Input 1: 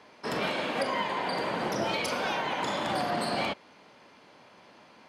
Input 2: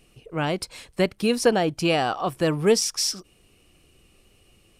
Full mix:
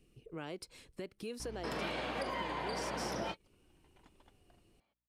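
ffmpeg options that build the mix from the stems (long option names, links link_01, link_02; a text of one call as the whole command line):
ffmpeg -i stem1.wav -i stem2.wav -filter_complex "[0:a]aeval=exprs='val(0)+0.00708*(sin(2*PI*60*n/s)+sin(2*PI*2*60*n/s)/2+sin(2*PI*3*60*n/s)/3+sin(2*PI*4*60*n/s)/4+sin(2*PI*5*60*n/s)/5)':channel_layout=same,adelay=1400,volume=-1dB[link_01];[1:a]lowshelf=frequency=510:width_type=q:width=1.5:gain=6.5,alimiter=limit=-10.5dB:level=0:latency=1:release=117,acrossover=split=400|3000[link_02][link_03][link_04];[link_02]acompressor=threshold=-31dB:ratio=6[link_05];[link_05][link_03][link_04]amix=inputs=3:normalize=0,volume=-15dB,asplit=2[link_06][link_07];[link_07]apad=whole_len=286130[link_08];[link_01][link_08]sidechaingate=range=-50dB:threshold=-60dB:ratio=16:detection=peak[link_09];[link_09][link_06]amix=inputs=2:normalize=0,acompressor=threshold=-41dB:ratio=2" out.wav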